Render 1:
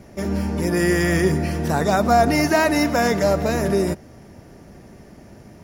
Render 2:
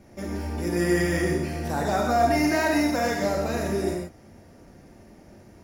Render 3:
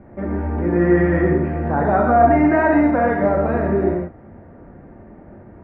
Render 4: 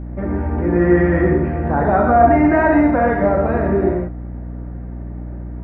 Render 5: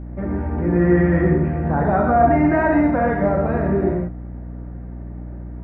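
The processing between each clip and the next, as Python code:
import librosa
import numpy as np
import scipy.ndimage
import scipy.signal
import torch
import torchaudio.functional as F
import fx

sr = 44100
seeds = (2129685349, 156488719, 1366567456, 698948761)

y1 = fx.rev_gated(x, sr, seeds[0], gate_ms=170, shape='flat', drr_db=-0.5)
y1 = y1 * 10.0 ** (-8.5 / 20.0)
y2 = scipy.signal.sosfilt(scipy.signal.butter(4, 1700.0, 'lowpass', fs=sr, output='sos'), y1)
y2 = y2 * 10.0 ** (8.0 / 20.0)
y3 = fx.add_hum(y2, sr, base_hz=60, snr_db=12)
y3 = y3 * 10.0 ** (1.5 / 20.0)
y4 = fx.dynamic_eq(y3, sr, hz=160.0, q=2.8, threshold_db=-34.0, ratio=4.0, max_db=7)
y4 = y4 * 10.0 ** (-3.5 / 20.0)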